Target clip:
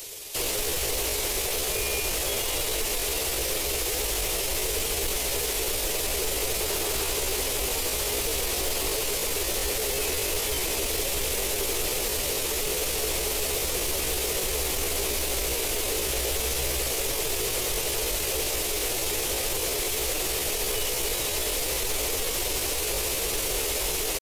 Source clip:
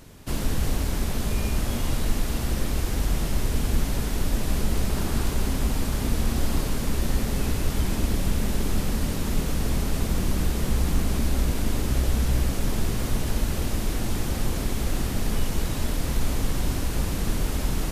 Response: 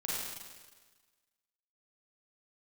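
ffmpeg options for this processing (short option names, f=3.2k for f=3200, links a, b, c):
-filter_complex "[0:a]acrossover=split=2500[a][b];[b]acompressor=threshold=-43dB:ratio=4:attack=1:release=60[c];[a][c]amix=inputs=2:normalize=0,lowshelf=f=310:t=q:w=3:g=-11,acrossover=split=400[d][e];[e]aexciter=amount=5.3:drive=4.3:freq=2.2k[f];[d][f]amix=inputs=2:normalize=0,aeval=exprs='0.224*sin(PI/2*2*val(0)/0.224)':c=same,atempo=0.74,volume=-8.5dB"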